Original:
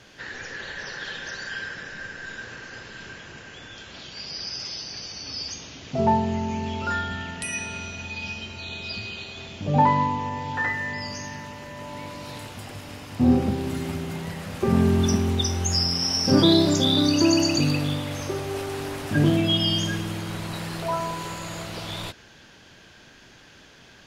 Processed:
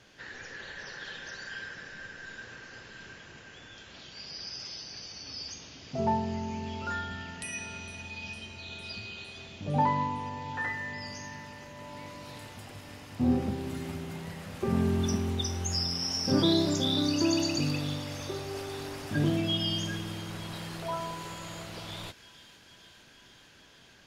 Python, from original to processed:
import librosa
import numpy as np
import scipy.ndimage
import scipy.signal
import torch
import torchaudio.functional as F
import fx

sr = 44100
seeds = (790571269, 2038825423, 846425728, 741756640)

y = fx.echo_wet_highpass(x, sr, ms=456, feedback_pct=79, hz=1800.0, wet_db=-17)
y = F.gain(torch.from_numpy(y), -7.5).numpy()